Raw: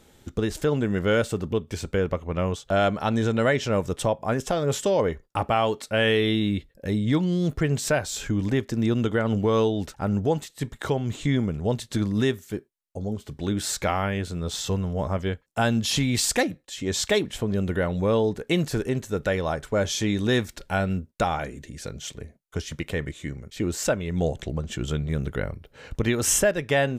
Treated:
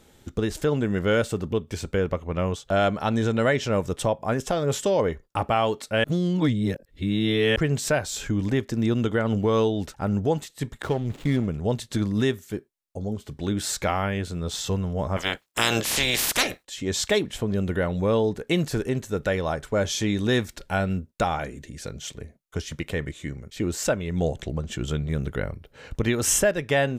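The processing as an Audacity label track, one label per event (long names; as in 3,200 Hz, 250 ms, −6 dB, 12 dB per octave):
6.040000	7.560000	reverse
10.820000	11.480000	slack as between gear wheels play −31 dBFS
15.160000	16.630000	ceiling on every frequency bin ceiling under each frame's peak by 28 dB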